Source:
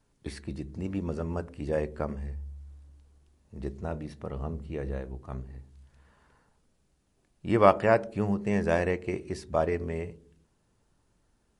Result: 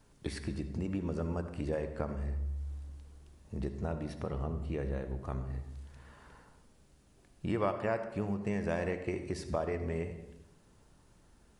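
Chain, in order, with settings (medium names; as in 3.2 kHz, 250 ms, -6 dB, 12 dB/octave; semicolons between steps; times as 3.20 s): compression 3:1, threshold -42 dBFS, peak gain reduction 21 dB; on a send: reverberation RT60 0.95 s, pre-delay 59 ms, DRR 9 dB; on the sum: trim +6.5 dB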